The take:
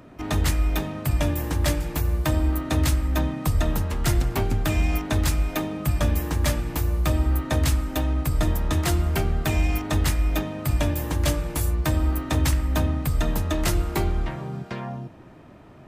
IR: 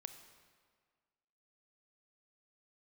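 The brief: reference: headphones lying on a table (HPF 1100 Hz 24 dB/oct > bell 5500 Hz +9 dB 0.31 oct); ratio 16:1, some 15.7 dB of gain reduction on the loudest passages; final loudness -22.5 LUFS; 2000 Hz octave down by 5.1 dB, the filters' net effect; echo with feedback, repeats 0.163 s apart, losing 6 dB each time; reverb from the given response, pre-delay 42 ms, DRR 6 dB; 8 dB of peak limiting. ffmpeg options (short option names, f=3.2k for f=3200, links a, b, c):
-filter_complex "[0:a]equalizer=f=2k:t=o:g=-6.5,acompressor=threshold=-33dB:ratio=16,alimiter=level_in=6dB:limit=-24dB:level=0:latency=1,volume=-6dB,aecho=1:1:163|326|489|652|815|978:0.501|0.251|0.125|0.0626|0.0313|0.0157,asplit=2[a][b];[1:a]atrim=start_sample=2205,adelay=42[c];[b][c]afir=irnorm=-1:irlink=0,volume=-1.5dB[d];[a][d]amix=inputs=2:normalize=0,highpass=f=1.1k:w=0.5412,highpass=f=1.1k:w=1.3066,equalizer=f=5.5k:t=o:w=0.31:g=9,volume=24dB"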